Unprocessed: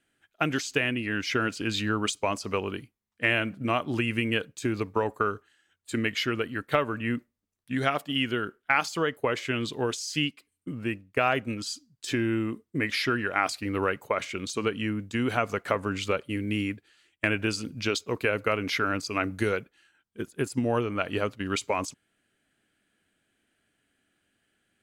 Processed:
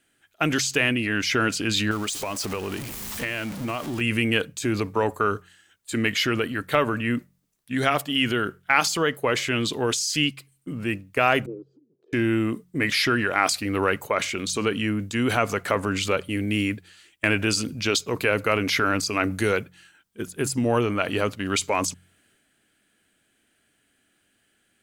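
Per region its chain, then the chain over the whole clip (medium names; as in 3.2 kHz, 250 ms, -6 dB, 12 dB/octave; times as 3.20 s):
1.91–4.01 s: jump at every zero crossing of -33 dBFS + transient shaper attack +5 dB, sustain -6 dB + compression 5:1, threshold -30 dBFS
11.46–12.13 s: Butterworth band-pass 410 Hz, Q 3.1 + upward compressor, threshold -56 dBFS
whole clip: treble shelf 4.7 kHz +6.5 dB; de-hum 45.09 Hz, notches 4; transient shaper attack -3 dB, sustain +4 dB; trim +4.5 dB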